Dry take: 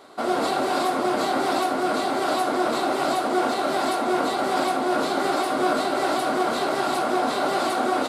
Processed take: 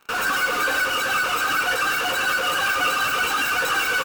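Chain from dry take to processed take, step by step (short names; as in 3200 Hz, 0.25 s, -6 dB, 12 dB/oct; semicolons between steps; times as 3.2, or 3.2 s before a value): resonant high shelf 6000 Hz +6.5 dB, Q 3; spectral noise reduction 11 dB; tone controls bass +8 dB, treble -9 dB; comb 1.5 ms, depth 76%; in parallel at -9.5 dB: fuzz box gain 50 dB, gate -48 dBFS; on the sum: split-band echo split 1400 Hz, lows 0.129 s, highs 0.201 s, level -9 dB; speed mistake 7.5 ips tape played at 15 ips; notch 4100 Hz, Q 17; gain -3.5 dB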